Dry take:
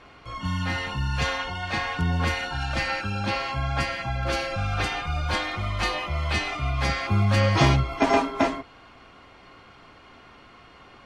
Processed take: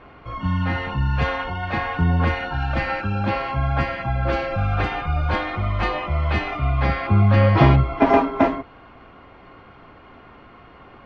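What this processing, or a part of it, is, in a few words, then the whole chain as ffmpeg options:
phone in a pocket: -filter_complex "[0:a]lowpass=3100,highshelf=f=2000:g=-9,asettb=1/sr,asplit=3[s0][s1][s2];[s0]atrim=end=6.574[s3];[s1]atrim=start=6.57:end=8.06,asetpts=PTS-STARTPTS,afade=t=in:d=0.004:c=qsin,afade=t=out:st=1.486:d=0.004:c=qsin,lowpass=f=5600:w=0.5412,lowpass=f=5600:w=1.3066[s4];[s2]atrim=start=8.056[s5];[s3][s4]acrossfade=d=0.004:c1=hsin:c2=qsin[s6];[s6][s5]acrossfade=d=0.004:c1=qsin:c2=hsin,volume=2"

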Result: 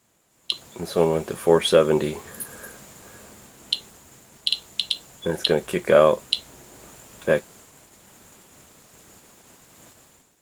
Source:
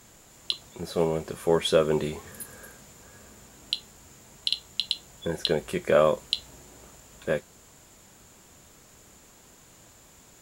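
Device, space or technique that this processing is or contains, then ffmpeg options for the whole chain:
video call: -af "highpass=f=130:p=1,dynaudnorm=f=290:g=3:m=2.51,agate=range=0.355:threshold=0.00501:ratio=16:detection=peak" -ar 48000 -c:a libopus -b:a 24k

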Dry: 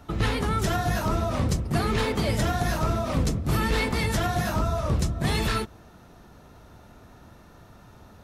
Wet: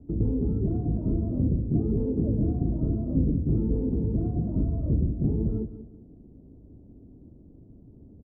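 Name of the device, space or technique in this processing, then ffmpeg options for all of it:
under water: -filter_complex "[0:a]lowpass=f=410:w=0.5412,lowpass=f=410:w=1.3066,equalizer=f=280:t=o:w=0.38:g=7,asplit=2[s0][s1];[s1]adelay=189,lowpass=f=4100:p=1,volume=0.224,asplit=2[s2][s3];[s3]adelay=189,lowpass=f=4100:p=1,volume=0.28,asplit=2[s4][s5];[s5]adelay=189,lowpass=f=4100:p=1,volume=0.28[s6];[s0][s2][s4][s6]amix=inputs=4:normalize=0"

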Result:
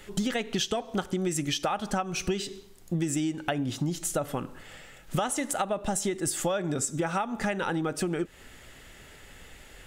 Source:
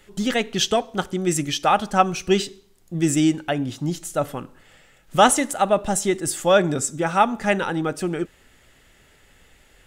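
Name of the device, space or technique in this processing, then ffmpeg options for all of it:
serial compression, leveller first: -af "acompressor=threshold=0.0891:ratio=3,acompressor=threshold=0.0282:ratio=6,volume=1.78"

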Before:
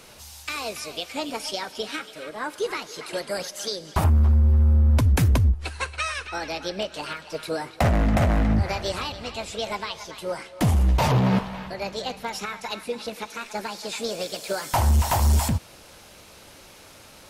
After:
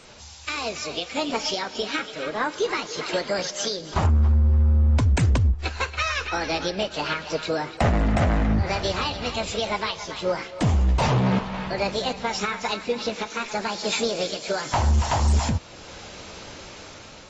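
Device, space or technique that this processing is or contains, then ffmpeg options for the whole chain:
low-bitrate web radio: -af "dynaudnorm=f=420:g=5:m=2.24,alimiter=limit=0.178:level=0:latency=1:release=463" -ar 24000 -c:a aac -b:a 24k

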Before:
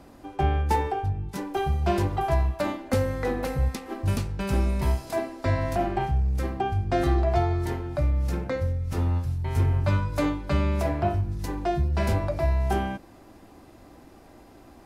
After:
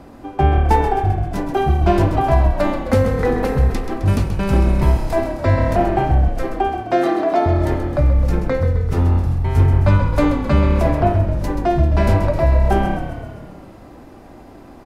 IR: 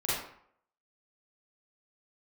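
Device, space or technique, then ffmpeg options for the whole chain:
behind a face mask: -filter_complex "[0:a]asettb=1/sr,asplit=3[s0][s1][s2];[s0]atrim=end=6.284[s3];[s1]atrim=start=6.28:end=7.46,asetpts=PTS-STARTPTS,afade=t=in:d=0.004:c=qsin,afade=t=out:st=1.176:d=0.004:c=qsin,highpass=f=290:w=0.5412,highpass=f=290:w=1.3066[s4];[s2]atrim=start=7.456[s5];[s3][s4]acrossfade=d=0.004:c1=hsin:c2=qsin[s6];[s6][s5]acrossfade=d=0.004:c1=qsin:c2=hsin,asplit=9[s7][s8][s9][s10][s11][s12][s13][s14][s15];[s8]adelay=131,afreqshift=-35,volume=0.355[s16];[s9]adelay=262,afreqshift=-70,volume=0.224[s17];[s10]adelay=393,afreqshift=-105,volume=0.141[s18];[s11]adelay=524,afreqshift=-140,volume=0.0891[s19];[s12]adelay=655,afreqshift=-175,volume=0.0556[s20];[s13]adelay=786,afreqshift=-210,volume=0.0351[s21];[s14]adelay=917,afreqshift=-245,volume=0.0221[s22];[s15]adelay=1048,afreqshift=-280,volume=0.014[s23];[s7][s16][s17][s18][s19][s20][s21][s22][s23]amix=inputs=9:normalize=0,highshelf=f=2900:g=-8,volume=2.82"

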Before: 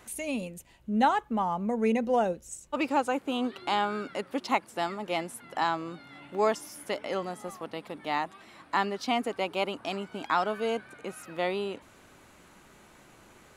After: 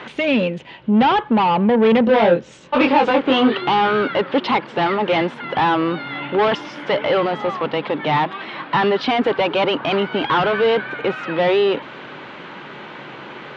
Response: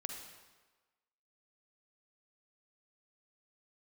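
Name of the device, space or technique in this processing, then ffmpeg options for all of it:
overdrive pedal into a guitar cabinet: -filter_complex "[0:a]asplit=2[s0][s1];[s1]highpass=f=720:p=1,volume=28.2,asoftclip=type=tanh:threshold=0.316[s2];[s0][s2]amix=inputs=2:normalize=0,lowpass=f=1200:p=1,volume=0.501,highpass=78,equalizer=f=93:t=q:w=4:g=-9,equalizer=f=140:t=q:w=4:g=8,equalizer=f=690:t=q:w=4:g=-6,equalizer=f=1200:t=q:w=4:g=-3,equalizer=f=3200:t=q:w=4:g=5,lowpass=f=4200:w=0.5412,lowpass=f=4200:w=1.3066,asettb=1/sr,asplit=3[s3][s4][s5];[s3]atrim=end=2.054[s6];[s4]atrim=start=2.05:end=3.58,asetpts=PTS-STARTPTS,afade=t=in:d=0.004:c=qsin,afade=t=out:st=1.526:d=0.004:c=qsin,asplit=2[s7][s8];[s8]adelay=23,volume=0.75[s9];[s7][s9]amix=inputs=2:normalize=0,atrim=end_sample=67473[s10];[s5]atrim=start=3.576[s11];[s6][s10]acrossfade=d=0.004:c1=hsin:c2=qsin[s12];[s12][s11]acrossfade=d=0.004:c1=qsin:c2=hsin,volume=1.78"

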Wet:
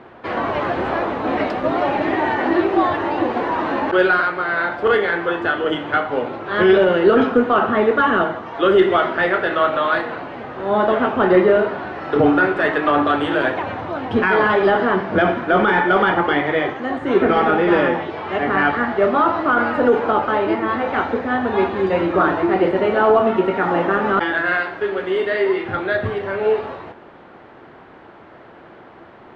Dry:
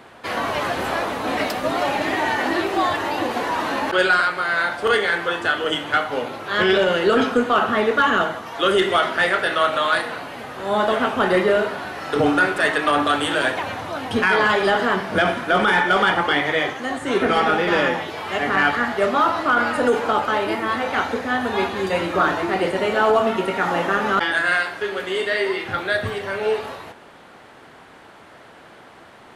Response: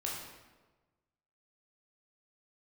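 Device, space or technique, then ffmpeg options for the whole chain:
phone in a pocket: -af "lowpass=3800,equalizer=f=350:t=o:w=0.28:g=5,highshelf=f=2400:g=-12,volume=1.5"

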